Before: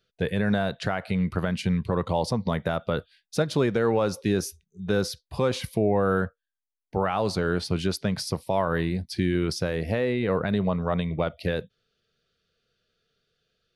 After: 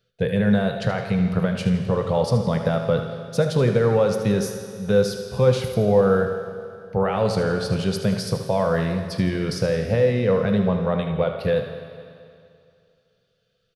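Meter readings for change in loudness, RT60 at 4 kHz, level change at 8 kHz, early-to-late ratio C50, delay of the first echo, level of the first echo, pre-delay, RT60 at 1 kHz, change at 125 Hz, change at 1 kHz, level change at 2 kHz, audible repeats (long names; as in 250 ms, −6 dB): +5.0 dB, 2.3 s, +1.5 dB, 5.5 dB, 77 ms, −10.5 dB, 18 ms, 2.4 s, +5.5 dB, +1.5 dB, +1.5 dB, 1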